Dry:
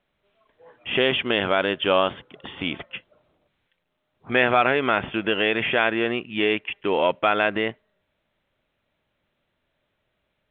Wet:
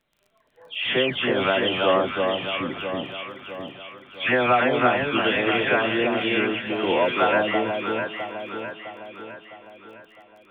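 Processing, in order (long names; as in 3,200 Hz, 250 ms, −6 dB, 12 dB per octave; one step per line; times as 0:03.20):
every frequency bin delayed by itself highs early, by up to 378 ms
delay that swaps between a low-pass and a high-pass 329 ms, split 1,100 Hz, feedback 70%, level −3 dB
surface crackle 21 per second −46 dBFS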